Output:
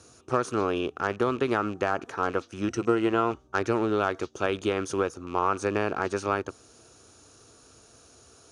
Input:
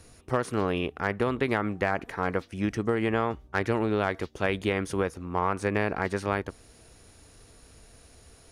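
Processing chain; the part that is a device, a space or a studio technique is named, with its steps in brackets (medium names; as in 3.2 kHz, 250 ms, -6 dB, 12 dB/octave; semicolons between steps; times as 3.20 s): 2.67–3.31 s: rippled EQ curve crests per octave 2, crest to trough 8 dB; car door speaker with a rattle (rattle on loud lows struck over -37 dBFS, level -34 dBFS; cabinet simulation 110–9400 Hz, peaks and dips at 180 Hz -7 dB, 360 Hz +4 dB, 1.3 kHz +7 dB, 2 kHz -10 dB, 6.3 kHz +9 dB)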